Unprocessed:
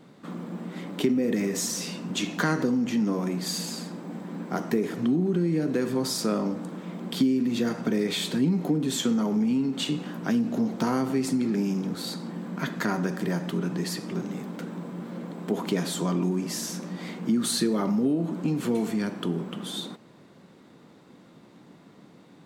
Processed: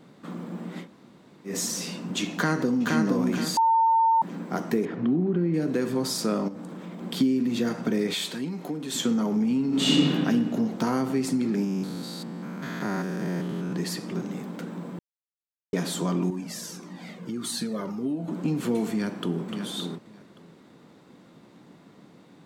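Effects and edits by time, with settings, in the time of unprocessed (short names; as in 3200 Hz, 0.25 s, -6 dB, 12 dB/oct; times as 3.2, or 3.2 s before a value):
0.84–1.49 room tone, crossfade 0.10 s
2.33–2.97 echo throw 0.47 s, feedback 35%, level -2.5 dB
3.57–4.22 bleep 904 Hz -17 dBFS
4.85–5.54 LPF 2400 Hz
6.48–7.02 compressor, threshold -34 dBFS
8.14–8.95 low shelf 420 Hz -11.5 dB
9.67–10.12 reverb throw, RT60 1.6 s, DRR -8 dB
11.64–13.73 stepped spectrum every 0.2 s
14.99–15.73 mute
16.3–18.28 cascading flanger falling 1.7 Hz
18.91–19.41 echo throw 0.57 s, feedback 15%, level -8 dB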